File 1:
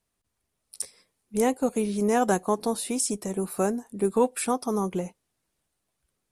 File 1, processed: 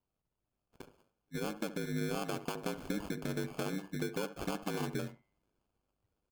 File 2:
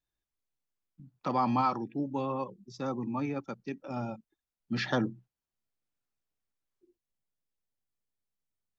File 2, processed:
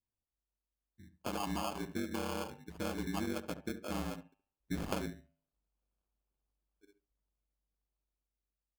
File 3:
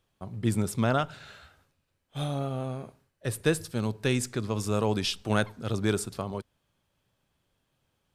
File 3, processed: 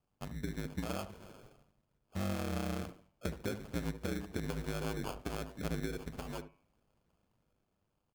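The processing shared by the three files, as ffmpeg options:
-filter_complex "[0:a]alimiter=limit=-18.5dB:level=0:latency=1:release=208,aemphasis=mode=reproduction:type=75kf,dynaudnorm=framelen=700:gausssize=5:maxgain=7dB,acrusher=samples=23:mix=1:aa=0.000001,acompressor=threshold=-29dB:ratio=5,bandreject=frequency=209.4:width_type=h:width=4,bandreject=frequency=418.8:width_type=h:width=4,bandreject=frequency=628.2:width_type=h:width=4,bandreject=frequency=837.6:width_type=h:width=4,bandreject=frequency=1047:width_type=h:width=4,bandreject=frequency=1256.4:width_type=h:width=4,bandreject=frequency=1465.8:width_type=h:width=4,bandreject=frequency=1675.2:width_type=h:width=4,bandreject=frequency=1884.6:width_type=h:width=4,bandreject=frequency=2094:width_type=h:width=4,bandreject=frequency=2303.4:width_type=h:width=4,bandreject=frequency=2512.8:width_type=h:width=4,bandreject=frequency=2722.2:width_type=h:width=4,bandreject=frequency=2931.6:width_type=h:width=4,bandreject=frequency=3141:width_type=h:width=4,aeval=exprs='val(0)*sin(2*PI*50*n/s)':channel_layout=same,asplit=2[link_01][link_02];[link_02]adelay=71,lowpass=frequency=1200:poles=1,volume=-11dB,asplit=2[link_03][link_04];[link_04]adelay=71,lowpass=frequency=1200:poles=1,volume=0.15[link_05];[link_01][link_03][link_05]amix=inputs=3:normalize=0,volume=-2.5dB"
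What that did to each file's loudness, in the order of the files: −11.5, −6.5, −10.5 LU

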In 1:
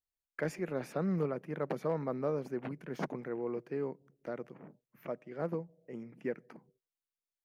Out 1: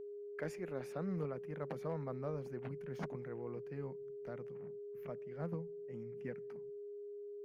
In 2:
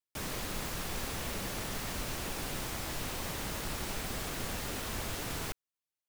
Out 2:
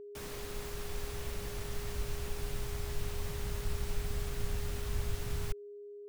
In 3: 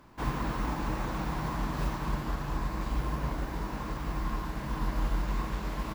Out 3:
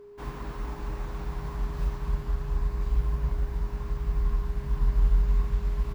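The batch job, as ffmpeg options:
-af "asubboost=boost=7.5:cutoff=120,aeval=exprs='val(0)+0.0126*sin(2*PI*410*n/s)':channel_layout=same,volume=-7dB"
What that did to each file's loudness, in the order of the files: −6.5, −3.0, +3.0 LU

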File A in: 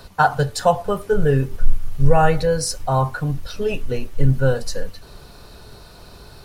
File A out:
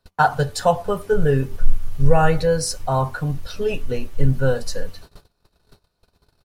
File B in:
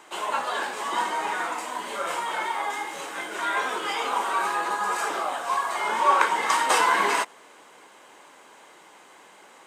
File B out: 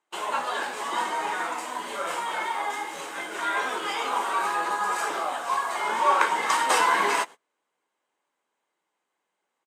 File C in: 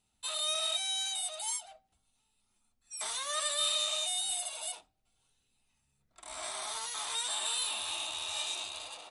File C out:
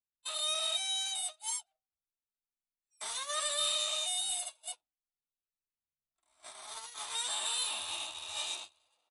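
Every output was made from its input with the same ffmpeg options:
-filter_complex "[0:a]agate=range=-29dB:threshold=-37dB:ratio=16:detection=peak,asplit=2[link_01][link_02];[link_02]adelay=12,volume=-14dB[link_03];[link_01][link_03]amix=inputs=2:normalize=0,volume=-1dB"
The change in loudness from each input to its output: −1.0, −1.0, −1.0 LU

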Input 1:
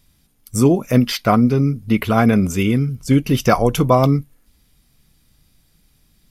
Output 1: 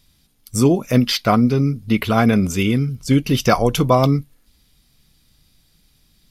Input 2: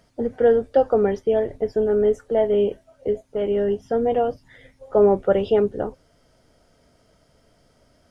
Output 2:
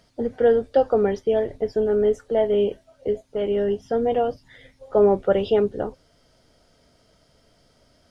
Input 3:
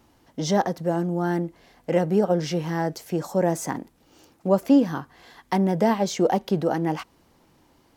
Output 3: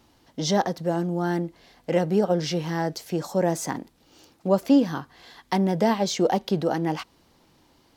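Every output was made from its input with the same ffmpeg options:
-af "equalizer=frequency=4100:width_type=o:width=1.1:gain=6,volume=-1dB"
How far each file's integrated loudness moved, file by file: −1.0, −1.0, −1.0 LU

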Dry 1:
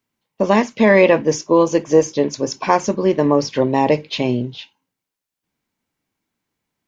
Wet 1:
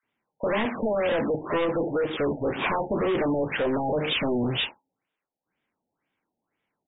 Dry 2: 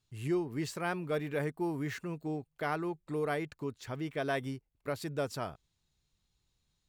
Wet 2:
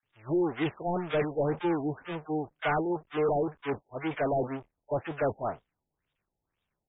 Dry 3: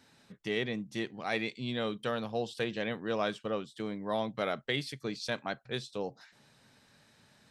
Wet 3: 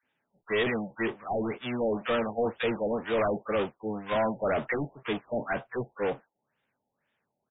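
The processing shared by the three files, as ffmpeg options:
-filter_complex "[0:a]aeval=exprs='val(0)+0.5*0.0531*sgn(val(0))':channel_layout=same,agate=range=-49dB:threshold=-28dB:ratio=16:detection=peak,alimiter=limit=-7.5dB:level=0:latency=1:release=297,asplit=2[link_01][link_02];[link_02]highpass=frequency=720:poles=1,volume=14dB,asoftclip=type=tanh:threshold=-7.5dB[link_03];[link_01][link_03]amix=inputs=2:normalize=0,lowpass=frequency=2900:poles=1,volume=-6dB,aresample=16000,asoftclip=type=hard:threshold=-22dB,aresample=44100,acrossover=split=1100[link_04][link_05];[link_04]adelay=30[link_06];[link_06][link_05]amix=inputs=2:normalize=0,afftfilt=real='re*lt(b*sr/1024,880*pow(3800/880,0.5+0.5*sin(2*PI*2*pts/sr)))':imag='im*lt(b*sr/1024,880*pow(3800/880,0.5+0.5*sin(2*PI*2*pts/sr)))':win_size=1024:overlap=0.75"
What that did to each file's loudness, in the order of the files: −9.5, +5.0, +5.0 LU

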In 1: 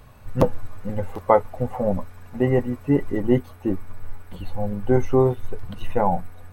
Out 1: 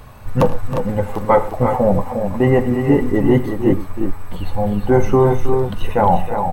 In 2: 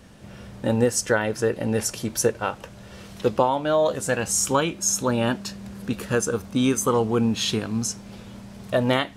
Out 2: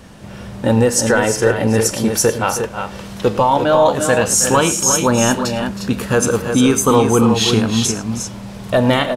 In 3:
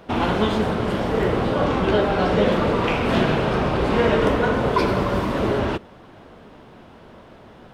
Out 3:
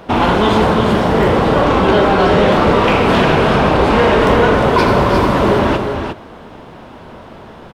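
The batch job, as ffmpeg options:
-filter_complex "[0:a]equalizer=frequency=940:width=1.9:gain=3,apsyclip=14.5dB,asplit=2[link_01][link_02];[link_02]aecho=0:1:44|81|106|318|354:0.141|0.106|0.141|0.224|0.447[link_03];[link_01][link_03]amix=inputs=2:normalize=0,volume=-6.5dB"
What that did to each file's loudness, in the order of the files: +6.0, +8.0, +8.5 LU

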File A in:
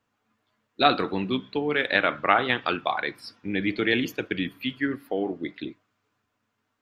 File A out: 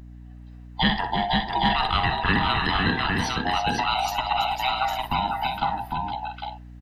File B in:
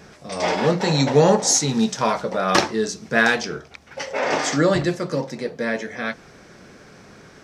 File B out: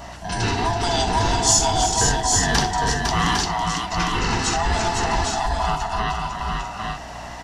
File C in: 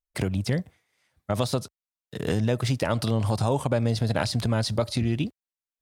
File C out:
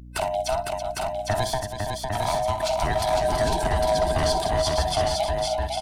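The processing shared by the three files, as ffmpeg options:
-filter_complex "[0:a]afftfilt=real='real(if(lt(b,1008),b+24*(1-2*mod(floor(b/24),2)),b),0)':imag='imag(if(lt(b,1008),b+24*(1-2*mod(floor(b/24),2)),b),0)':win_size=2048:overlap=0.75,asplit=2[link_01][link_02];[link_02]acompressor=threshold=-35dB:ratio=8,volume=2.5dB[link_03];[link_01][link_03]amix=inputs=2:normalize=0,adynamicequalizer=threshold=0.0112:dfrequency=2300:dqfactor=2.3:tfrequency=2300:tqfactor=2.3:attack=5:release=100:ratio=0.375:range=2.5:mode=cutabove:tftype=bell,acrossover=split=230|3000[link_04][link_05][link_06];[link_05]acompressor=threshold=-24dB:ratio=2.5[link_07];[link_04][link_07][link_06]amix=inputs=3:normalize=0,aecho=1:1:45|62|329|505|805|851:0.106|0.282|0.355|0.596|0.596|0.376,acrossover=split=950[link_08][link_09];[link_08]asoftclip=type=hard:threshold=-18.5dB[link_10];[link_10][link_09]amix=inputs=2:normalize=0,aeval=exprs='val(0)+0.00891*(sin(2*PI*60*n/s)+sin(2*PI*2*60*n/s)/2+sin(2*PI*3*60*n/s)/3+sin(2*PI*4*60*n/s)/4+sin(2*PI*5*60*n/s)/5)':channel_layout=same"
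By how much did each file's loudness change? +1.5, −0.5, +2.0 LU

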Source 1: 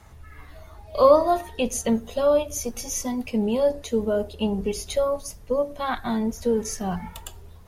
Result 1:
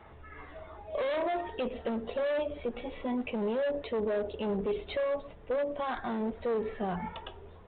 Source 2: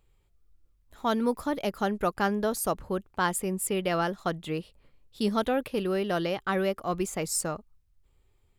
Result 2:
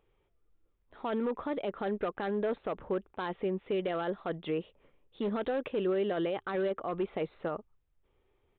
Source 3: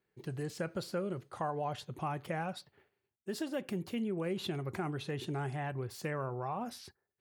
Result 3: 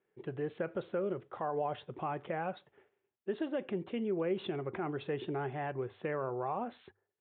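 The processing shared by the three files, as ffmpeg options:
-af "lowpass=frequency=2300:poles=1,bandreject=frequency=50:width_type=h:width=6,bandreject=frequency=100:width_type=h:width=6,aresample=8000,asoftclip=type=hard:threshold=-23dB,aresample=44100,lowshelf=frequency=200:gain=-10.5,alimiter=level_in=5.5dB:limit=-24dB:level=0:latency=1:release=42,volume=-5.5dB,equalizer=frequency=420:width_type=o:width=1.1:gain=5,volume=2dB"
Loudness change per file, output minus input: −9.0, −5.0, +1.0 LU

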